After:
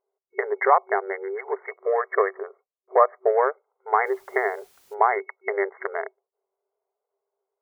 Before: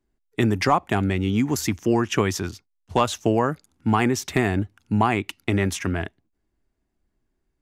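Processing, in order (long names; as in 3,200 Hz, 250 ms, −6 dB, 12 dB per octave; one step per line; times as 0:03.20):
adaptive Wiener filter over 25 samples
0:01.69–0:03.31: comb filter 1.7 ms, depth 51%
brick-wall band-pass 380–2,200 Hz
in parallel at −3 dB: downward compressor, threshold −33 dBFS, peak gain reduction 17.5 dB
0:04.05–0:04.93: on the sum: background noise white −61 dBFS
level +2 dB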